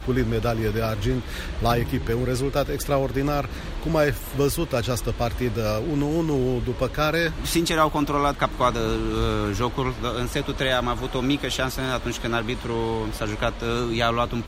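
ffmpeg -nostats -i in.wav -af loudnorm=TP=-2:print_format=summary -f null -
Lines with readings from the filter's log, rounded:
Input Integrated:    -24.7 LUFS
Input True Peak:      -6.6 dBTP
Input LRA:             2.5 LU
Input Threshold:     -34.7 LUFS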